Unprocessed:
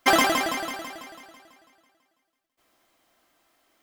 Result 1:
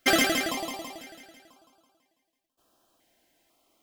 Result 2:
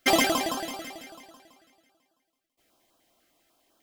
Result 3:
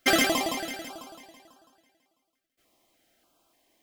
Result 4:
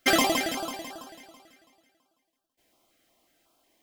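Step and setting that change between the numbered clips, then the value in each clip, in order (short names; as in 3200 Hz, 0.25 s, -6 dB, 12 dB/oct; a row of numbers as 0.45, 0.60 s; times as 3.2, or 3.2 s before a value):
stepped notch, rate: 2, 10, 3.4, 5.5 Hz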